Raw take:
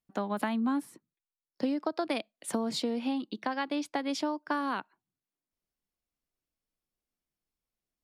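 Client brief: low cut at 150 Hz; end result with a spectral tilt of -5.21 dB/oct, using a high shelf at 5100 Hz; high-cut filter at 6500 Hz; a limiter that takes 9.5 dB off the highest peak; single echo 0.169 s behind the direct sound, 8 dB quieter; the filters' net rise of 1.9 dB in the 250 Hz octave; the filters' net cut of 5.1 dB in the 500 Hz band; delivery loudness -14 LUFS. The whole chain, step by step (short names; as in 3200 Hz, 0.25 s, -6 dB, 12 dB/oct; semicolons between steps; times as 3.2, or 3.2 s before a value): HPF 150 Hz; LPF 6500 Hz; bell 250 Hz +4.5 dB; bell 500 Hz -7.5 dB; high shelf 5100 Hz -8.5 dB; limiter -27 dBFS; echo 0.169 s -8 dB; gain +21.5 dB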